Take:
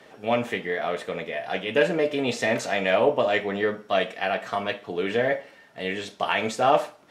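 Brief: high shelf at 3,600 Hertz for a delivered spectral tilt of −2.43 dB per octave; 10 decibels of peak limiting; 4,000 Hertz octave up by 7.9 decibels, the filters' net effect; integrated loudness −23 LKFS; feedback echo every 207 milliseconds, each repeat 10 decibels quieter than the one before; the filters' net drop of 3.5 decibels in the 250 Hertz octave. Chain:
parametric band 250 Hz −4.5 dB
high-shelf EQ 3,600 Hz +7 dB
parametric band 4,000 Hz +6.5 dB
brickwall limiter −15 dBFS
repeating echo 207 ms, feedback 32%, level −10 dB
level +4 dB

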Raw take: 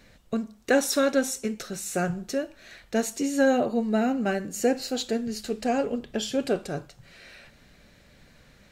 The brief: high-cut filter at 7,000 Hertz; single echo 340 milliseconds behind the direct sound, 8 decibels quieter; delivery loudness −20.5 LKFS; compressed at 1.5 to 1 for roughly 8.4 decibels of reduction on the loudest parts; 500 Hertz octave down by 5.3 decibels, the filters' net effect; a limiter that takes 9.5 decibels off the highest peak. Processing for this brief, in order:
low-pass filter 7,000 Hz
parametric band 500 Hz −6 dB
downward compressor 1.5 to 1, threshold −44 dBFS
brickwall limiter −30.5 dBFS
single-tap delay 340 ms −8 dB
level +19 dB

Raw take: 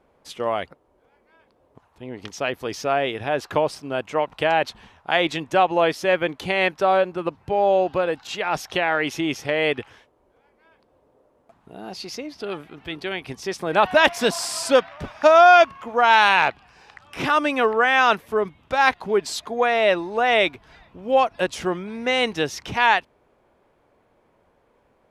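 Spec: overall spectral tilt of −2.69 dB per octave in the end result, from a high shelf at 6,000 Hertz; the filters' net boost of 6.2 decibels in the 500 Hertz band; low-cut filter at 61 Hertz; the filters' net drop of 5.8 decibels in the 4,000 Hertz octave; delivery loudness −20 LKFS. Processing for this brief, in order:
high-pass filter 61 Hz
parametric band 500 Hz +8 dB
parametric band 4,000 Hz −7 dB
high-shelf EQ 6,000 Hz −4.5 dB
level −3 dB

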